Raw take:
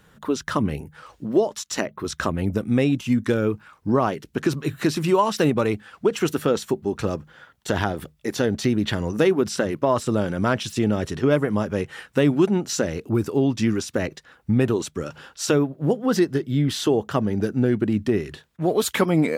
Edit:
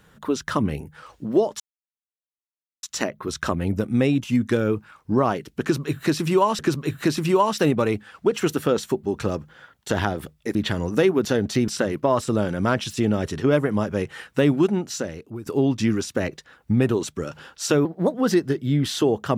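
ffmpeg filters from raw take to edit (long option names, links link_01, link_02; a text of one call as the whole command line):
ffmpeg -i in.wav -filter_complex "[0:a]asplit=9[link_01][link_02][link_03][link_04][link_05][link_06][link_07][link_08][link_09];[link_01]atrim=end=1.6,asetpts=PTS-STARTPTS,afade=type=out:start_time=1.596:duration=0.004:curve=hsin,apad=pad_dur=1.23[link_10];[link_02]atrim=start=1.6:end=5.362,asetpts=PTS-STARTPTS,afade=type=in:duration=0.004:curve=hsin[link_11];[link_03]atrim=start=4.378:end=8.342[link_12];[link_04]atrim=start=8.768:end=9.472[link_13];[link_05]atrim=start=8.338:end=8.772[link_14];[link_06]atrim=start=9.468:end=13.25,asetpts=PTS-STARTPTS,afade=type=out:start_time=2.862:duration=0.92:silence=0.149624[link_15];[link_07]atrim=start=13.25:end=15.644,asetpts=PTS-STARTPTS,afade=type=in:duration=0.004:curve=hsin:silence=0.149624[link_16];[link_08]atrim=start=15.64:end=15.99,asetpts=PTS-STARTPTS,asetrate=53361,aresample=44100,atrim=end_sample=12756,asetpts=PTS-STARTPTS[link_17];[link_09]atrim=start=15.986[link_18];[link_10][link_11]concat=n=2:v=0:a=1[link_19];[link_19][link_12]acrossfade=duration=0.004:curve1=hsin:curve2=hsin[link_20];[link_20][link_13]acrossfade=duration=0.004:curve1=hsin:curve2=hsin[link_21];[link_21][link_14]acrossfade=duration=0.004:curve1=hsin:curve2=hsin[link_22];[link_15][link_16]concat=n=2:v=0:a=1[link_23];[link_22][link_23]acrossfade=duration=0.004:curve1=hsin:curve2=hsin[link_24];[link_24][link_17]acrossfade=duration=0.004:curve1=hsin:curve2=hsin[link_25];[link_25][link_18]acrossfade=duration=0.004:curve1=hsin:curve2=hsin" out.wav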